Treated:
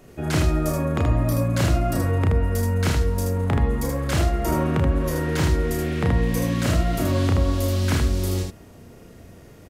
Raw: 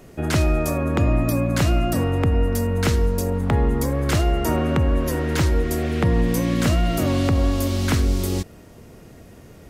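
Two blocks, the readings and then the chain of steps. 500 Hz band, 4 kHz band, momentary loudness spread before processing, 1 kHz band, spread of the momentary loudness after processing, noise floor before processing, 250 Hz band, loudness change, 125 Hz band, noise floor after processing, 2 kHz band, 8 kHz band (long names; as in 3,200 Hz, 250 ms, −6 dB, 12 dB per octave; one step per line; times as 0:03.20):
−2.0 dB, −2.0 dB, 3 LU, −1.0 dB, 3 LU, −45 dBFS, −2.5 dB, −1.5 dB, 0.0 dB, −46 dBFS, −1.5 dB, −1.5 dB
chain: ambience of single reflections 33 ms −4 dB, 78 ms −3.5 dB
level −4 dB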